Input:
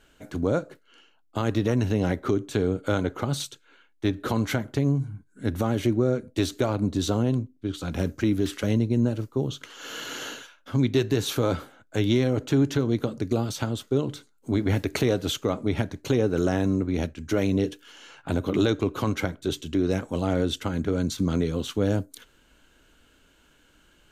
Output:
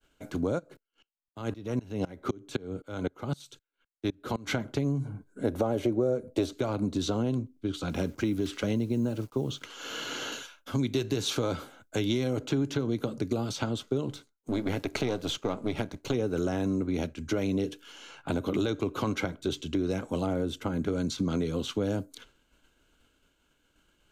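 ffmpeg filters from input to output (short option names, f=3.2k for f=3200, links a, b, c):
-filter_complex "[0:a]asplit=3[a][b][c];[a]afade=t=out:st=0.58:d=0.02[d];[b]aeval=exprs='val(0)*pow(10,-25*if(lt(mod(-3.9*n/s,1),2*abs(-3.9)/1000),1-mod(-3.9*n/s,1)/(2*abs(-3.9)/1000),(mod(-3.9*n/s,1)-2*abs(-3.9)/1000)/(1-2*abs(-3.9)/1000))/20)':c=same,afade=t=in:st=0.58:d=0.02,afade=t=out:st=4.46:d=0.02[e];[c]afade=t=in:st=4.46:d=0.02[f];[d][e][f]amix=inputs=3:normalize=0,asettb=1/sr,asplit=3[g][h][i];[g]atrim=end=5.054[j];[h]atrim=start=5.05:end=6.53,asetpts=PTS-STARTPTS,afade=t=in:d=0.004:c=qsin,afade=t=out:st=1.476:d=0.004:c=qsin,equalizer=f=560:t=o:w=1.7:g=13.5[k];[i]atrim=start=6.526[l];[j][k]acrossfade=d=0.004:c1=hsin:c2=qsin[m];[m][l]acrossfade=d=0.004:c1=qsin:c2=hsin,asettb=1/sr,asplit=3[n][o][p];[n]atrim=end=7.894[q];[o]atrim=start=7.89:end=9.65,asetpts=PTS-STARTPTS,afade=t=in:d=0.004:c=qsin,afade=t=out:st=1.756:d=0.004:c=qsin,acrusher=bits=8:mix=0:aa=0.5[r];[p]atrim=start=9.646[s];[q][r]acrossfade=d=0.004:c1=hsin:c2=qsin[t];[t][s]acrossfade=d=0.004:c1=qsin:c2=hsin,asettb=1/sr,asplit=3[u][v][w];[u]atrim=end=10.324[x];[v]atrim=start=10.32:end=12.39,asetpts=PTS-STARTPTS,afade=t=in:d=0.004:c=qsin,afade=t=out:st=2.066:d=0.004:c=qsin,highshelf=f=5.9k:g=10[y];[w]atrim=start=12.386[z];[x][y]acrossfade=d=0.004:c1=hsin:c2=qsin[aa];[aa][z]acrossfade=d=0.004:c1=qsin:c2=hsin,asettb=1/sr,asplit=3[ab][ac][ad];[ab]atrim=end=14.104[ae];[ac]atrim=start=14.1:end=16.14,asetpts=PTS-STARTPTS,afade=t=in:d=0.004:c=qsin,afade=t=out:st=2.036:d=0.004:c=qsin,aeval=exprs='if(lt(val(0),0),0.447*val(0),val(0))':c=same[af];[ad]atrim=start=16.136[ag];[ae][af]acrossfade=d=0.004:c1=hsin:c2=qsin[ah];[ah][ag]acrossfade=d=0.004:c1=qsin:c2=hsin,asettb=1/sr,asplit=3[ai][aj][ak];[ai]atrim=end=20.264[al];[aj]atrim=start=20.26:end=20.82,asetpts=PTS-STARTPTS,afade=t=in:d=0.004:c=qsin,afade=t=out:st=0.556:d=0.004:c=qsin,equalizer=f=4.2k:t=o:w=2.4:g=-7.5[am];[ak]atrim=start=20.816[an];[al][am]acrossfade=d=0.004:c1=hsin:c2=qsin[ao];[ao][an]acrossfade=d=0.004:c1=qsin:c2=hsin,acrossover=split=140|7200[ap][aq][ar];[ap]acompressor=threshold=-40dB:ratio=4[as];[aq]acompressor=threshold=-26dB:ratio=4[at];[ar]acompressor=threshold=-58dB:ratio=4[au];[as][at][au]amix=inputs=3:normalize=0,bandreject=f=1.8k:w=8.1,agate=range=-33dB:threshold=-52dB:ratio=3:detection=peak"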